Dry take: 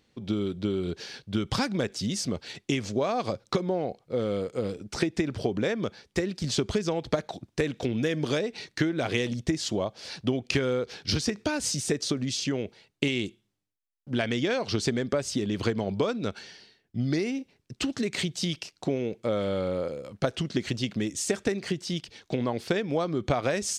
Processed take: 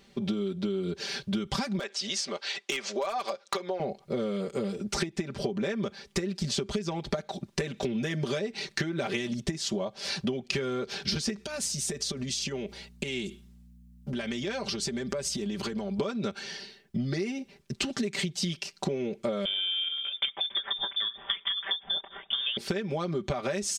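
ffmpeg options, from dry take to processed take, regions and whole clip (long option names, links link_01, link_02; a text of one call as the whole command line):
ffmpeg -i in.wav -filter_complex "[0:a]asettb=1/sr,asplit=3[link_01][link_02][link_03];[link_01]atrim=end=1.794[link_04];[link_02]atrim=start=1.79:end=3.8,asetpts=PTS-STARTPTS,afade=type=in:duration=0.004:curve=qsin,afade=type=out:start_time=2.006:duration=0.004:curve=qsin,highpass=660,lowpass=6100,aeval=exprs='0.075*(abs(mod(val(0)/0.075+3,4)-2)-1)':channel_layout=same[link_05];[link_03]atrim=start=3.796[link_06];[link_04][link_05]acrossfade=duration=0.004:curve1=hsin:curve2=qsin[link_07];[link_07][link_06]acrossfade=duration=0.004:curve1=qsin:curve2=hsin,asettb=1/sr,asplit=3[link_08][link_09][link_10];[link_08]atrim=end=11.374[link_11];[link_09]atrim=start=11.37:end=15.99,asetpts=PTS-STARTPTS,afade=type=in:duration=0.004:curve=qsin,afade=type=out:start_time=4.616:duration=0.004:curve=qsin,acompressor=threshold=-38dB:ratio=5:attack=3.2:release=140:knee=1:detection=peak,highshelf=frequency=5200:gain=5.5,aeval=exprs='val(0)+0.001*(sin(2*PI*60*n/s)+sin(2*PI*2*60*n/s)/2+sin(2*PI*3*60*n/s)/3+sin(2*PI*4*60*n/s)/4+sin(2*PI*5*60*n/s)/5)':channel_layout=same[link_12];[link_10]atrim=start=15.986[link_13];[link_11][link_12]acrossfade=duration=0.004:curve1=hsin:curve2=qsin[link_14];[link_14][link_13]acrossfade=duration=0.004:curve1=qsin:curve2=hsin,asettb=1/sr,asplit=3[link_15][link_16][link_17];[link_15]atrim=end=19.454[link_18];[link_16]atrim=start=19.45:end=22.57,asetpts=PTS-STARTPTS,afade=type=in:duration=0.004:curve=qsin,afade=type=out:start_time=3.116:duration=0.004:curve=qsin,lowpass=frequency=3100:width_type=q:width=0.5098,lowpass=frequency=3100:width_type=q:width=0.6013,lowpass=frequency=3100:width_type=q:width=0.9,lowpass=frequency=3100:width_type=q:width=2.563,afreqshift=-3700,asplit=2[link_19][link_20];[link_20]adelay=191,lowpass=frequency=910:poles=1,volume=-20.5dB,asplit=2[link_21][link_22];[link_22]adelay=191,lowpass=frequency=910:poles=1,volume=0.4,asplit=2[link_23][link_24];[link_24]adelay=191,lowpass=frequency=910:poles=1,volume=0.4[link_25];[link_19][link_21][link_23][link_25]amix=inputs=4:normalize=0,atrim=end_sample=137592[link_26];[link_17]atrim=start=22.566[link_27];[link_18][link_26]acrossfade=duration=0.004:curve1=hsin:curve2=qsin[link_28];[link_28][link_27]acrossfade=duration=0.004:curve1=qsin:curve2=hsin,aecho=1:1:5.1:0.98,acompressor=threshold=-35dB:ratio=6,volume=6.5dB" out.wav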